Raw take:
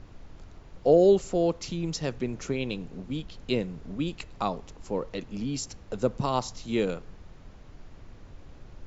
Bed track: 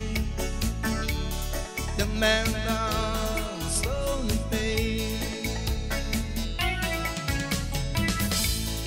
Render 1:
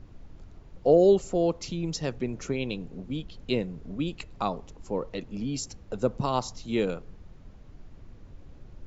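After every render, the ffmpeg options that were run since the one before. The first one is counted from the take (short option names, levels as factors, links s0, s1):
-af "afftdn=nr=6:nf=-50"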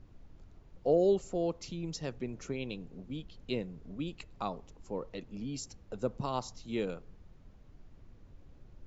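-af "volume=0.422"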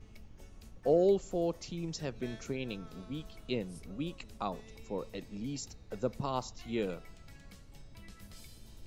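-filter_complex "[1:a]volume=0.0376[s0];[0:a][s0]amix=inputs=2:normalize=0"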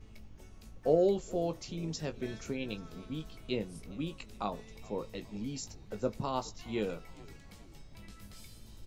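-filter_complex "[0:a]asplit=2[s0][s1];[s1]adelay=19,volume=0.376[s2];[s0][s2]amix=inputs=2:normalize=0,asplit=5[s3][s4][s5][s6][s7];[s4]adelay=417,afreqshift=-69,volume=0.0794[s8];[s5]adelay=834,afreqshift=-138,volume=0.0468[s9];[s6]adelay=1251,afreqshift=-207,volume=0.0275[s10];[s7]adelay=1668,afreqshift=-276,volume=0.0164[s11];[s3][s8][s9][s10][s11]amix=inputs=5:normalize=0"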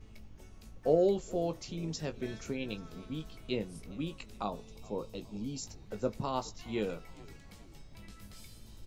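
-filter_complex "[0:a]asettb=1/sr,asplit=3[s0][s1][s2];[s0]atrim=end=4.434[s3];[s1]atrim=start=4.43:end=5.62,asetpts=PTS-STARTPTS,afade=t=in:d=0.004:c=qsin,afade=t=out:st=1.186:d=0.004:c=qsin,equalizer=f=1900:t=o:w=0.46:g=-14.5[s4];[s2]atrim=start=5.616[s5];[s3][s4]acrossfade=d=0.004:c1=hsin:c2=qsin[s6];[s6][s5]acrossfade=d=0.004:c1=qsin:c2=hsin"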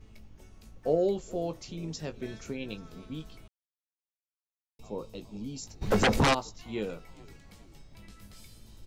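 -filter_complex "[0:a]asplit=3[s0][s1][s2];[s0]afade=t=out:st=5.81:d=0.02[s3];[s1]aeval=exprs='0.119*sin(PI/2*7.08*val(0)/0.119)':c=same,afade=t=in:st=5.81:d=0.02,afade=t=out:st=6.33:d=0.02[s4];[s2]afade=t=in:st=6.33:d=0.02[s5];[s3][s4][s5]amix=inputs=3:normalize=0,asplit=3[s6][s7][s8];[s6]atrim=end=3.48,asetpts=PTS-STARTPTS,afade=t=out:st=3.476:d=0.004:c=hsin[s9];[s7]atrim=start=3.48:end=4.79,asetpts=PTS-STARTPTS,volume=0[s10];[s8]atrim=start=4.79,asetpts=PTS-STARTPTS,afade=t=in:d=0.004:c=hsin[s11];[s9][s10][s11]concat=n=3:v=0:a=1"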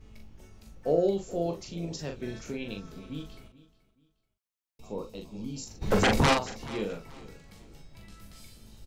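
-filter_complex "[0:a]asplit=2[s0][s1];[s1]adelay=41,volume=0.562[s2];[s0][s2]amix=inputs=2:normalize=0,aecho=1:1:430|860:0.112|0.0325"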